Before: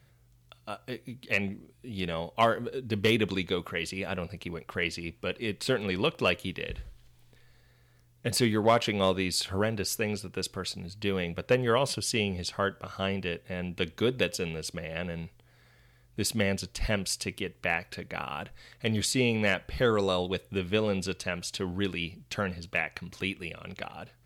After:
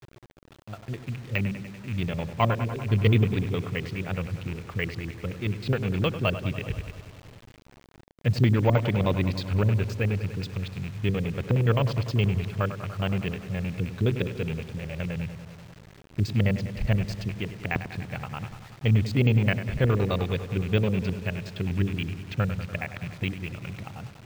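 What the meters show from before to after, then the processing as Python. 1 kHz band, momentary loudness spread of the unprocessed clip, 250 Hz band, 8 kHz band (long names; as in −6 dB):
−1.5 dB, 13 LU, +3.5 dB, below −10 dB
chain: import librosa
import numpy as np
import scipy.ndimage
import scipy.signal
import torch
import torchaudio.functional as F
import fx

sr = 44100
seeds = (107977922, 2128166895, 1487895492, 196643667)

y = fx.rattle_buzz(x, sr, strikes_db=-42.0, level_db=-28.0)
y = fx.filter_lfo_lowpass(y, sr, shape='square', hz=9.6, low_hz=270.0, high_hz=3400.0, q=0.83)
y = fx.peak_eq(y, sr, hz=110.0, db=13.0, octaves=1.0)
y = fx.echo_wet_lowpass(y, sr, ms=97, feedback_pct=72, hz=2500.0, wet_db=-11)
y = fx.quant_dither(y, sr, seeds[0], bits=8, dither='none')
y = np.repeat(scipy.signal.resample_poly(y, 1, 2), 2)[:len(y)]
y = fx.high_shelf(y, sr, hz=9000.0, db=-5.0)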